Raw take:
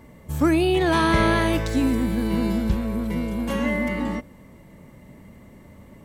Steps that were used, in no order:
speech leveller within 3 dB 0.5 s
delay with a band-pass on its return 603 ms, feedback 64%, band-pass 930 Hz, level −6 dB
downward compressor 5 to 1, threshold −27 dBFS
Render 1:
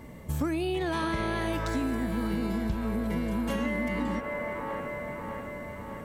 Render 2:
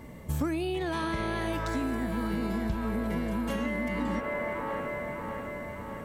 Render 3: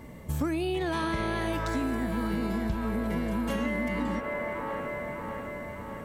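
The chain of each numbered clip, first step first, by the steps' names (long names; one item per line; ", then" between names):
speech leveller, then delay with a band-pass on its return, then downward compressor
delay with a band-pass on its return, then downward compressor, then speech leveller
delay with a band-pass on its return, then speech leveller, then downward compressor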